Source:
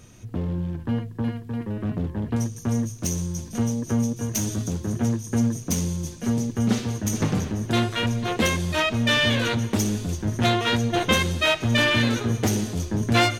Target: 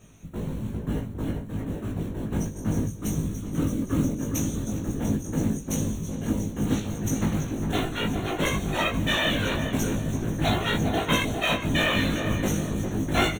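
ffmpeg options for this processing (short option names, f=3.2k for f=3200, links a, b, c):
-filter_complex "[0:a]asettb=1/sr,asplit=3[a][b][c];[a]atrim=end=2.894[d];[b]atrim=start=2.89:end=4.04,asetpts=PTS-STARTPTS,afade=t=in:d=0.004:c=qsin,afade=t=out:st=1.146:d=0.004:c=qsin,equalizer=f=200:t=o:w=0.33:g=9,equalizer=f=800:t=o:w=0.33:g=-9,equalizer=f=1.25k:t=o:w=0.33:g=8,equalizer=f=6.3k:t=o:w=0.33:g=-5[e];[c]atrim=start=4.036[f];[d][e]acrossfade=d=0.004:c1=hsin:c2=qsin[g];[g][f]acrossfade=d=0.004:c1=qsin:c2=hsin,acrusher=bits=5:mode=log:mix=0:aa=0.000001,afftfilt=real='hypot(re,im)*cos(2*PI*random(0))':imag='hypot(re,im)*sin(2*PI*random(1))':win_size=512:overlap=0.75,asuperstop=centerf=4900:order=4:qfactor=3.1,asplit=2[h][i];[i]adelay=19,volume=-2dB[j];[h][j]amix=inputs=2:normalize=0,asplit=2[k][l];[l]adelay=405,lowpass=f=1.2k:p=1,volume=-4.5dB,asplit=2[m][n];[n]adelay=405,lowpass=f=1.2k:p=1,volume=0.46,asplit=2[o][p];[p]adelay=405,lowpass=f=1.2k:p=1,volume=0.46,asplit=2[q][r];[r]adelay=405,lowpass=f=1.2k:p=1,volume=0.46,asplit=2[s][t];[t]adelay=405,lowpass=f=1.2k:p=1,volume=0.46,asplit=2[u][v];[v]adelay=405,lowpass=f=1.2k:p=1,volume=0.46[w];[k][m][o][q][s][u][w]amix=inputs=7:normalize=0"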